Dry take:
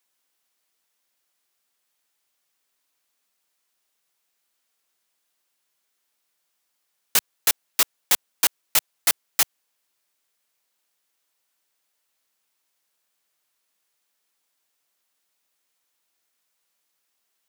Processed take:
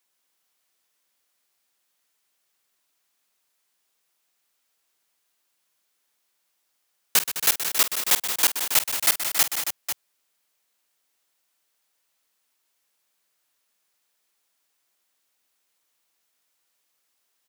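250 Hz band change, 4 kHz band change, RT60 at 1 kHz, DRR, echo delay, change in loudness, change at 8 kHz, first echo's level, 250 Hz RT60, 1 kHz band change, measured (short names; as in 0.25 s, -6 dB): +1.5 dB, +1.5 dB, none, none, 48 ms, +1.0 dB, +1.5 dB, -13.0 dB, none, +1.5 dB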